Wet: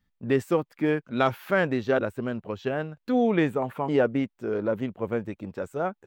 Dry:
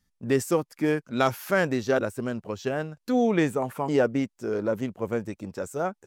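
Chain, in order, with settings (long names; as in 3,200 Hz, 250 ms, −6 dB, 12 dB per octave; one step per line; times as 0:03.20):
flat-topped bell 8,000 Hz −13.5 dB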